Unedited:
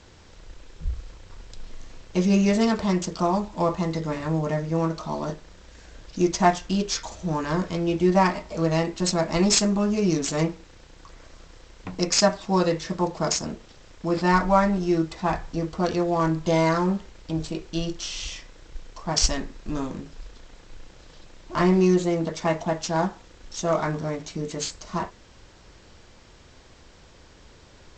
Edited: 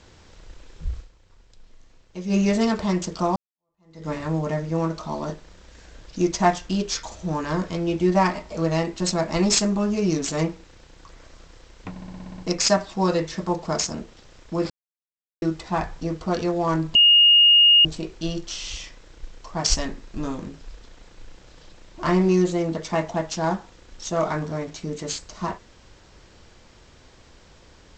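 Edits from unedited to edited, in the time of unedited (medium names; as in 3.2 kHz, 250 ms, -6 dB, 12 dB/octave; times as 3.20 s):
0.97–2.37 s: dip -11.5 dB, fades 0.12 s
3.36–4.08 s: fade in exponential
11.90 s: stutter 0.06 s, 9 plays
14.22–14.94 s: mute
16.47–17.37 s: bleep 2.85 kHz -10.5 dBFS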